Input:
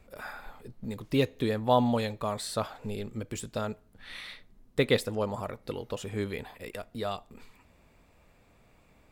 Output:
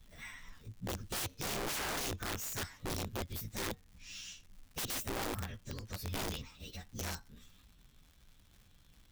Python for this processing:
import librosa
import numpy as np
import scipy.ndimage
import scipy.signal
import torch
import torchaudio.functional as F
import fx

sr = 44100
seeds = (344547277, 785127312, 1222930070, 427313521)

y = fx.partial_stretch(x, sr, pct=117)
y = fx.tone_stack(y, sr, knobs='6-0-2')
y = (np.mod(10.0 ** (49.0 / 20.0) * y + 1.0, 2.0) - 1.0) / 10.0 ** (49.0 / 20.0)
y = fx.dmg_crackle(y, sr, seeds[0], per_s=200.0, level_db=-68.0)
y = y * librosa.db_to_amplitude(16.5)